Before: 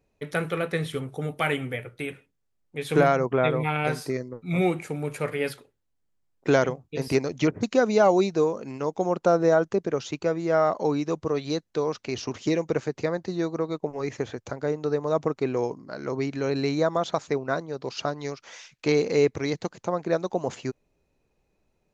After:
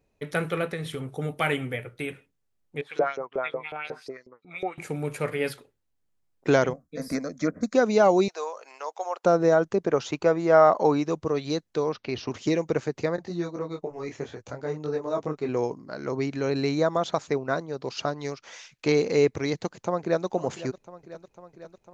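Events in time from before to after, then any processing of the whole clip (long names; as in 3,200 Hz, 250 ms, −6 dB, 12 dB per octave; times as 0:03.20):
0:00.73–0:01.13: downward compressor 5 to 1, threshold −28 dBFS
0:02.81–0:04.78: auto-filter band-pass saw up 5.5 Hz 450–5,600 Hz
0:06.73–0:07.74: phaser with its sweep stopped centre 580 Hz, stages 8
0:08.28–0:09.24: high-pass filter 640 Hz 24 dB per octave
0:09.82–0:11.06: parametric band 910 Hz +6.5 dB 2.1 octaves
0:11.89–0:12.30: low-pass filter 4,800 Hz 24 dB per octave
0:13.16–0:15.49: micro pitch shift up and down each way 21 cents
0:18.04–0:18.48: bad sample-rate conversion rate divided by 3×, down none, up filtered
0:19.53–0:20.25: delay throw 500 ms, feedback 75%, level −15.5 dB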